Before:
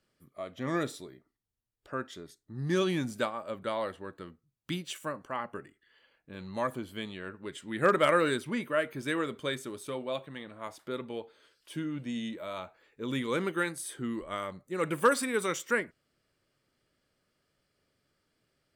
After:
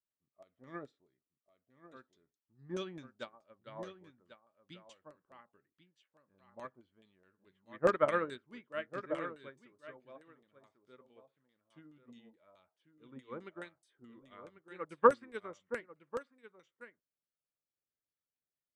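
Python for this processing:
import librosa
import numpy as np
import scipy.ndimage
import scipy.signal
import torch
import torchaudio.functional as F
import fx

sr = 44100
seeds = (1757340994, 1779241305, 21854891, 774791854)

y = x + 10.0 ** (-5.5 / 20.0) * np.pad(x, (int(1094 * sr / 1000.0), 0))[:len(x)]
y = fx.filter_lfo_lowpass(y, sr, shape='saw_down', hz=4.7, low_hz=600.0, high_hz=7700.0, q=1.6)
y = fx.upward_expand(y, sr, threshold_db=-37.0, expansion=2.5)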